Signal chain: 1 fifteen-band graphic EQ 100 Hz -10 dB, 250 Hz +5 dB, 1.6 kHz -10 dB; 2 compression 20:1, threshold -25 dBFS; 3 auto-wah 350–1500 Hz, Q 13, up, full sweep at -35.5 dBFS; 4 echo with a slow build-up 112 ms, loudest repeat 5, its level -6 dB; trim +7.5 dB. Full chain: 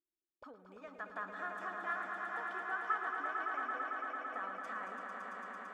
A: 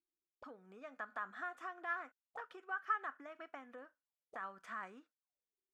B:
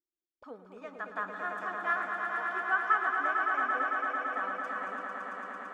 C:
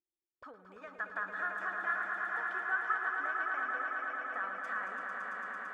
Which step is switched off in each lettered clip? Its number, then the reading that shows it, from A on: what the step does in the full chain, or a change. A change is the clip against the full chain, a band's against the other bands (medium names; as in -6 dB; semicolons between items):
4, echo-to-direct 3.5 dB to none; 2, mean gain reduction 5.5 dB; 1, 2 kHz band +7.0 dB